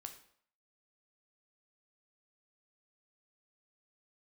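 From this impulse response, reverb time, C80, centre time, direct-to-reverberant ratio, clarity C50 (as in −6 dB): 0.60 s, 13.0 dB, 13 ms, 5.5 dB, 10.0 dB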